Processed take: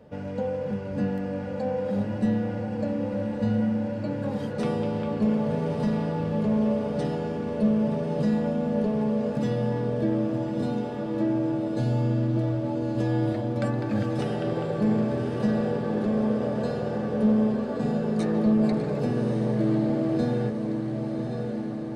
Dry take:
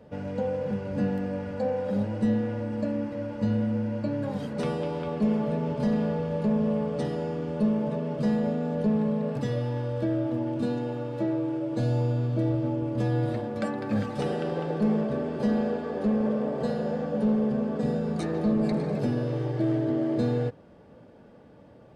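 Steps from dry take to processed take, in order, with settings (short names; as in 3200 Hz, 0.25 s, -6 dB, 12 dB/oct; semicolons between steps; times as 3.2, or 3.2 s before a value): diffused feedback echo 1.164 s, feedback 65%, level -6 dB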